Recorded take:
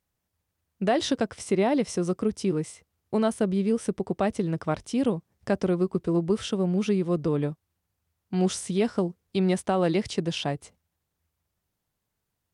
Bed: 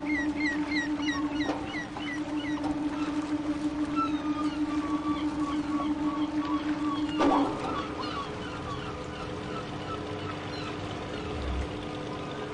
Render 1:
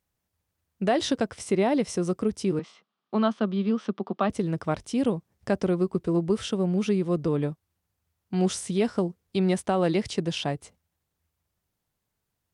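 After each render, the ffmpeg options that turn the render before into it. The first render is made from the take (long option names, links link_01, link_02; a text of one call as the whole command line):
ffmpeg -i in.wav -filter_complex "[0:a]asettb=1/sr,asplit=3[link_01][link_02][link_03];[link_01]atrim=end=2.594[link_04];[link_02]atrim=start=2.59:end=4.3,asetpts=PTS-STARTPTS,afade=type=in:duration=0.004:curve=qsin,afade=type=out:start_time=1.706:duration=0.004:curve=qsin,highpass=frequency=210:width=0.5412,highpass=frequency=210:width=1.3066,equalizer=frequency=210:width_type=q:width=4:gain=5,equalizer=frequency=310:width_type=q:width=4:gain=-6,equalizer=frequency=480:width_type=q:width=4:gain=-6,equalizer=frequency=1200:width_type=q:width=4:gain=9,equalizer=frequency=2100:width_type=q:width=4:gain=-4,equalizer=frequency=3300:width_type=q:width=4:gain=5,lowpass=frequency=4600:width=0.5412,lowpass=frequency=4600:width=1.3066[link_05];[link_03]atrim=start=4.296[link_06];[link_04][link_05]acrossfade=duration=0.004:curve1=hsin:curve2=qsin[link_07];[link_07][link_06]acrossfade=duration=0.004:curve1=qsin:curve2=hsin" out.wav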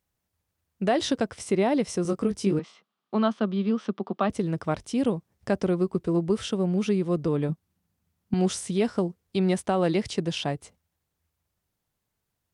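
ffmpeg -i in.wav -filter_complex "[0:a]asettb=1/sr,asplit=3[link_01][link_02][link_03];[link_01]atrim=end=2.034[link_04];[link_02]atrim=start=2.03:end=2.58,asetpts=PTS-STARTPTS,afade=type=in:duration=0.004:curve=qsin,afade=type=out:start_time=0.546:duration=0.004:curve=qsin,asplit=2[link_05][link_06];[link_06]adelay=20,volume=-4dB[link_07];[link_05][link_07]amix=inputs=2:normalize=0,atrim=end_sample=24255[link_08];[link_03]atrim=start=2.576[link_09];[link_04][link_08]acrossfade=duration=0.004:curve1=hsin:curve2=qsin[link_10];[link_10][link_09]acrossfade=duration=0.004:curve1=qsin:curve2=hsin,asettb=1/sr,asplit=3[link_11][link_12][link_13];[link_11]atrim=end=7.494[link_14];[link_12]atrim=start=7.49:end=8.34,asetpts=PTS-STARTPTS,afade=type=in:duration=0.004:curve=qsin,afade=type=out:start_time=0.846:duration=0.004:curve=qsin,equalizer=frequency=200:width=1.5:gain=12.5[link_15];[link_13]atrim=start=8.336[link_16];[link_14][link_15]acrossfade=duration=0.004:curve1=hsin:curve2=qsin[link_17];[link_17][link_16]acrossfade=duration=0.004:curve1=qsin:curve2=hsin" out.wav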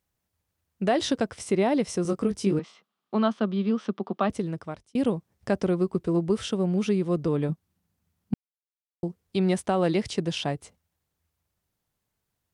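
ffmpeg -i in.wav -filter_complex "[0:a]asplit=4[link_01][link_02][link_03][link_04];[link_01]atrim=end=4.95,asetpts=PTS-STARTPTS,afade=type=out:start_time=4.28:duration=0.67[link_05];[link_02]atrim=start=4.95:end=8.34,asetpts=PTS-STARTPTS,afade=type=in:duration=0.004:curve=hsin,afade=type=out:start_time=3.386:duration=0.004:curve=hsin[link_06];[link_03]atrim=start=8.34:end=9.03,asetpts=PTS-STARTPTS,volume=0[link_07];[link_04]atrim=start=9.03,asetpts=PTS-STARTPTS,afade=type=in:duration=0.004:curve=hsin[link_08];[link_05][link_06][link_07][link_08]concat=n=4:v=0:a=1" out.wav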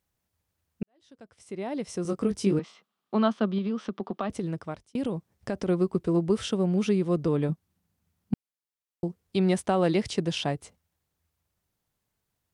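ffmpeg -i in.wav -filter_complex "[0:a]asettb=1/sr,asplit=3[link_01][link_02][link_03];[link_01]atrim=end=3.584[link_04];[link_02]atrim=start=3.58:end=5.69,asetpts=PTS-STARTPTS,afade=type=in:duration=0.004:curve=qsin,afade=type=out:start_time=2.106:duration=0.004:curve=qsin,acompressor=threshold=-25dB:ratio=6:attack=3.2:release=140:knee=1:detection=peak[link_05];[link_03]atrim=start=5.686[link_06];[link_04][link_05]acrossfade=duration=0.004:curve1=hsin:curve2=qsin[link_07];[link_07][link_06]acrossfade=duration=0.004:curve1=qsin:curve2=hsin,asplit=2[link_08][link_09];[link_08]atrim=end=0.83,asetpts=PTS-STARTPTS,afade=type=out:start_time=0.826:duration=0.004:curve=hsin[link_10];[link_09]atrim=start=0.83,asetpts=PTS-STARTPTS,afade=type=in:duration=1.5:curve=qua[link_11];[link_10][link_11]concat=n=2:v=0:a=1" out.wav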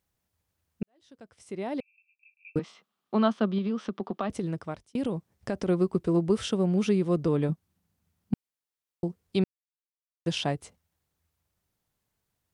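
ffmpeg -i in.wav -filter_complex "[0:a]asettb=1/sr,asplit=3[link_01][link_02][link_03];[link_01]atrim=end=1.804[link_04];[link_02]atrim=start=1.8:end=2.56,asetpts=PTS-STARTPTS,afade=type=in:duration=0.004:curve=qsin,afade=type=out:start_time=0.756:duration=0.004:curve=qsin,asuperpass=centerf=2500:order=12:qfactor=6.9[link_05];[link_03]atrim=start=2.556[link_06];[link_04][link_05]acrossfade=duration=0.004:curve1=hsin:curve2=qsin[link_07];[link_07][link_06]acrossfade=duration=0.004:curve1=qsin:curve2=hsin,asplit=3[link_08][link_09][link_10];[link_08]atrim=end=9.44,asetpts=PTS-STARTPTS,afade=type=out:start_time=9.436:duration=0.004:curve=hsin[link_11];[link_09]atrim=start=9.44:end=10.26,asetpts=PTS-STARTPTS,volume=0[link_12];[link_10]atrim=start=10.26,asetpts=PTS-STARTPTS,afade=type=in:duration=0.004:curve=hsin[link_13];[link_11][link_12][link_13]concat=n=3:v=0:a=1" out.wav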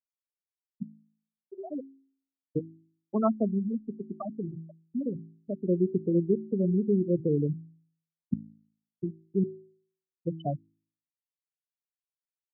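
ffmpeg -i in.wav -af "afftfilt=real='re*gte(hypot(re,im),0.2)':imag='im*gte(hypot(re,im),0.2)':win_size=1024:overlap=0.75,bandreject=frequency=54.14:width_type=h:width=4,bandreject=frequency=108.28:width_type=h:width=4,bandreject=frequency=162.42:width_type=h:width=4,bandreject=frequency=216.56:width_type=h:width=4,bandreject=frequency=270.7:width_type=h:width=4,bandreject=frequency=324.84:width_type=h:width=4,bandreject=frequency=378.98:width_type=h:width=4" out.wav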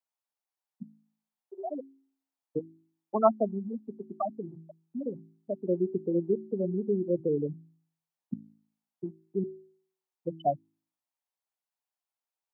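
ffmpeg -i in.wav -af "highpass=frequency=380:poles=1,equalizer=frequency=820:width_type=o:width=0.93:gain=11.5" out.wav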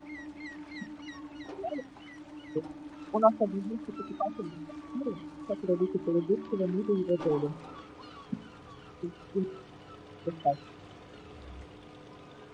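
ffmpeg -i in.wav -i bed.wav -filter_complex "[1:a]volume=-14.5dB[link_01];[0:a][link_01]amix=inputs=2:normalize=0" out.wav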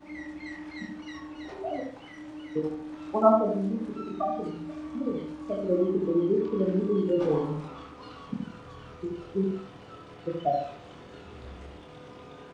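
ffmpeg -i in.wav -filter_complex "[0:a]asplit=2[link_01][link_02];[link_02]adelay=26,volume=-3dB[link_03];[link_01][link_03]amix=inputs=2:normalize=0,asplit=2[link_04][link_05];[link_05]adelay=72,lowpass=frequency=2000:poles=1,volume=-3dB,asplit=2[link_06][link_07];[link_07]adelay=72,lowpass=frequency=2000:poles=1,volume=0.4,asplit=2[link_08][link_09];[link_09]adelay=72,lowpass=frequency=2000:poles=1,volume=0.4,asplit=2[link_10][link_11];[link_11]adelay=72,lowpass=frequency=2000:poles=1,volume=0.4,asplit=2[link_12][link_13];[link_13]adelay=72,lowpass=frequency=2000:poles=1,volume=0.4[link_14];[link_04][link_06][link_08][link_10][link_12][link_14]amix=inputs=6:normalize=0" out.wav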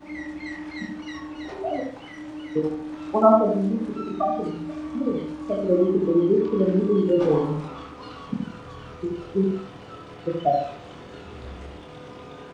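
ffmpeg -i in.wav -af "volume=5.5dB,alimiter=limit=-3dB:level=0:latency=1" out.wav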